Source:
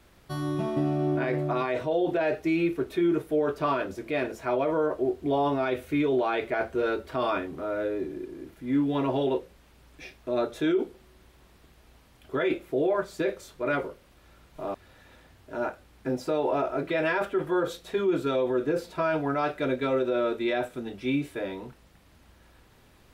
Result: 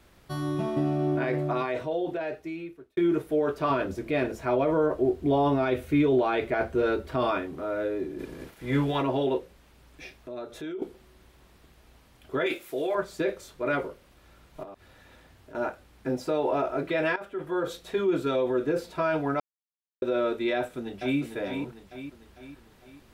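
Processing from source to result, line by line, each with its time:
1.48–2.97 s: fade out
3.70–7.31 s: bass shelf 240 Hz +8 dB
8.18–9.01 s: spectral peaks clipped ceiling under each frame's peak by 15 dB
10.19–10.82 s: compression 2:1, threshold -42 dBFS
12.46–12.95 s: tilt EQ +3.5 dB/octave
14.63–15.55 s: compression 3:1, threshold -45 dBFS
17.16–17.78 s: fade in, from -15 dB
19.40–20.02 s: mute
20.56–21.19 s: echo throw 450 ms, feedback 50%, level -7 dB

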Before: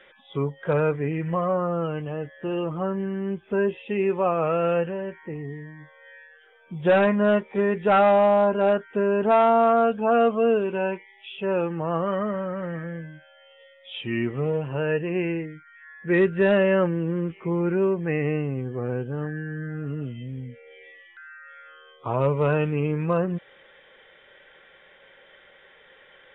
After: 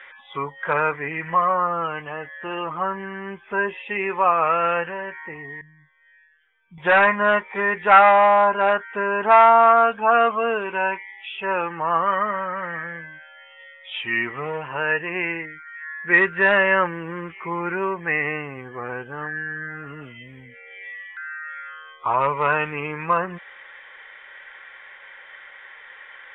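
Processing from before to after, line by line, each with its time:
5.61–6.78 s: FFT filter 160 Hz 0 dB, 610 Hz -29 dB, 4.3 kHz -12 dB
whole clip: ten-band graphic EQ 125 Hz -10 dB, 250 Hz -5 dB, 500 Hz -4 dB, 1 kHz +11 dB, 2 kHz +12 dB; trim -1 dB

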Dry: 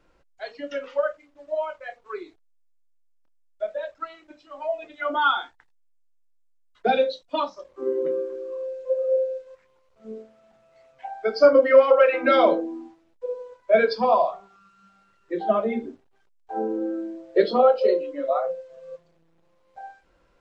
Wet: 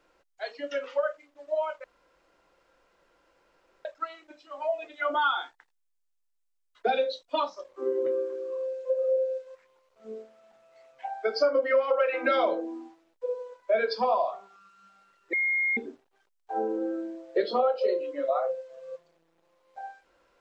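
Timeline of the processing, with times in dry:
1.84–3.85 s: room tone
15.33–15.77 s: bleep 2.14 kHz -22.5 dBFS
whole clip: tone controls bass -13 dB, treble +1 dB; compression 3:1, threshold -23 dBFS

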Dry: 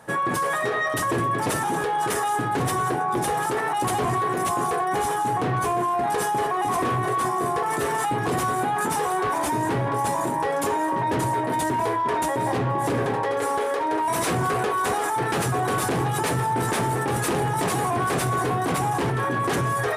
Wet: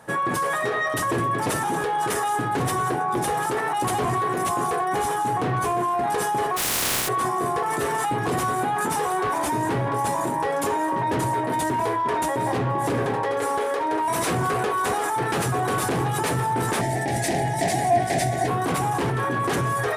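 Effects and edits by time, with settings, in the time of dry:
6.56–7.07 s: spectral contrast reduction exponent 0.15
16.81–18.48 s: FFT filter 330 Hz 0 dB, 480 Hz -8 dB, 690 Hz +11 dB, 1.2 kHz -22 dB, 1.9 kHz +6 dB, 2.7 kHz -3 dB, 5.1 kHz +4 dB, 8.4 kHz +1 dB, 14 kHz -5 dB

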